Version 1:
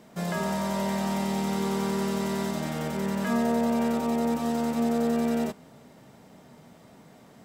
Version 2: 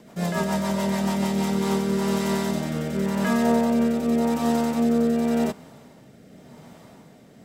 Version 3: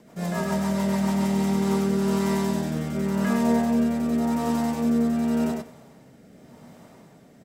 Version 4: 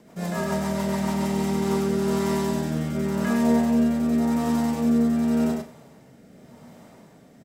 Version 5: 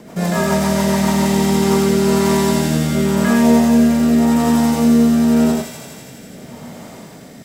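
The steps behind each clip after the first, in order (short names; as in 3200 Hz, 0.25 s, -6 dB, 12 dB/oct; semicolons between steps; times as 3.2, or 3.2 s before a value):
rotary speaker horn 7 Hz, later 0.9 Hz, at 1.09; gain +6 dB
bell 3500 Hz -3 dB 0.77 oct; tapped delay 0.102/0.193 s -3/-18.5 dB; gain -3.5 dB
doubler 38 ms -10 dB
in parallel at +1 dB: compressor, threshold -32 dBFS, peak gain reduction 15 dB; on the sum: thin delay 83 ms, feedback 83%, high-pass 2500 Hz, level -3 dB; gain +6.5 dB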